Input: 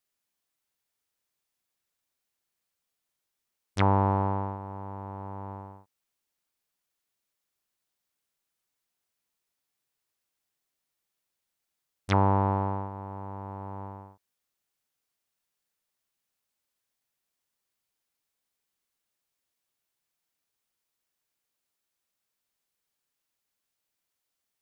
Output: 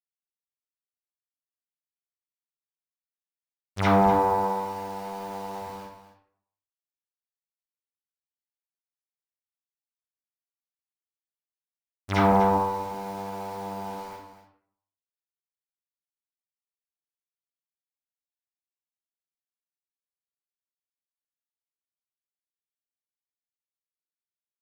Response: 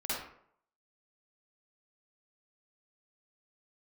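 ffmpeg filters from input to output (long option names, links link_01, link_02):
-filter_complex "[0:a]asettb=1/sr,asplit=3[link_01][link_02][link_03];[link_01]atrim=end=4.014[link_04];[link_02]atrim=start=4.01:end=5.62,asetpts=PTS-STARTPTS,afade=type=in:duration=0.004:curve=qsin,afade=type=out:start_time=1.606:duration=0.004:curve=qsin,highpass=frequency=170:poles=1[link_05];[link_03]atrim=start=5.616[link_06];[link_04][link_05]acrossfade=duration=0.004:curve1=hsin:curve2=qsin[link_07];[link_07][link_06]acrossfade=duration=0.004:curve1=qsin:curve2=hsin,asettb=1/sr,asplit=3[link_08][link_09][link_10];[link_08]atrim=end=12.264[link_11];[link_09]atrim=start=12.26:end=12.86,asetpts=PTS-STARTPTS,afade=type=in:duration=0.004:curve=qsin,afade=type=out:start_time=0.596:duration=0.004:curve=qsin,agate=range=-8dB:threshold=-24dB:ratio=16:detection=peak[link_12];[link_10]atrim=start=12.856[link_13];[link_11][link_12]acrossfade=duration=0.004:curve1=hsin:curve2=qsin[link_14];[link_14][link_13]acrossfade=duration=0.004:curve1=qsin:curve2=hsin,flanger=delay=0.9:depth=5.8:regen=-72:speed=0.51:shape=triangular,acrusher=bits=8:mix=0:aa=0.000001,aecho=1:1:247:0.251[link_15];[1:a]atrim=start_sample=2205[link_16];[link_15][link_16]afir=irnorm=-1:irlink=0,volume=5.5dB"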